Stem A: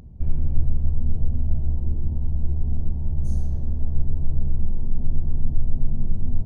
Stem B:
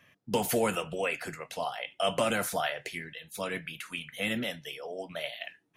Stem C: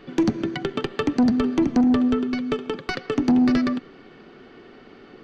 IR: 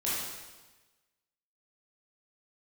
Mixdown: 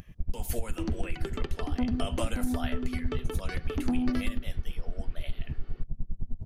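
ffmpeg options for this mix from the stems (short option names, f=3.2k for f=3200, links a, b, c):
-filter_complex "[0:a]aeval=exprs='val(0)*pow(10,-28*(0.5-0.5*cos(2*PI*9.8*n/s))/20)':c=same,volume=1.5dB[a];[1:a]volume=-5dB,asplit=2[b][c];[2:a]adelay=600,volume=-10.5dB[d];[c]apad=whole_len=257304[e];[d][e]sidechaincompress=threshold=-37dB:ratio=8:attack=11:release=183[f];[a][b]amix=inputs=2:normalize=0,highshelf=f=4.9k:g=6,acompressor=threshold=-23dB:ratio=12,volume=0dB[g];[f][g]amix=inputs=2:normalize=0"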